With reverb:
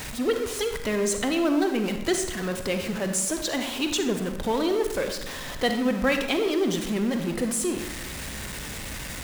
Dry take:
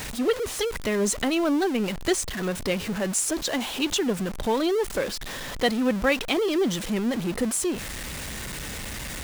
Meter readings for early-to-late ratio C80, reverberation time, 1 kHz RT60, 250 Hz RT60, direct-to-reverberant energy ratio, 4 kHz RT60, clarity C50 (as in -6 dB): 9.0 dB, 1.0 s, 0.95 s, 1.0 s, 5.5 dB, 0.70 s, 6.5 dB